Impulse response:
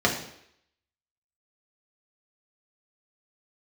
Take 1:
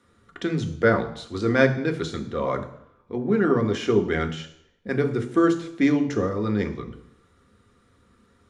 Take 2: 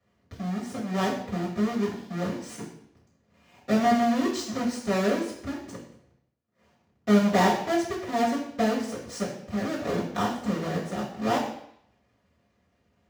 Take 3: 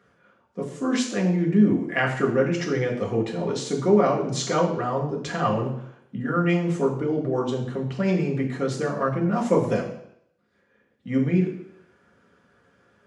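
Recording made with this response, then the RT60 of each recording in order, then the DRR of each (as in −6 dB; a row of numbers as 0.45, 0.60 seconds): 3; 0.70, 0.70, 0.70 seconds; 5.0, −9.0, −2.0 decibels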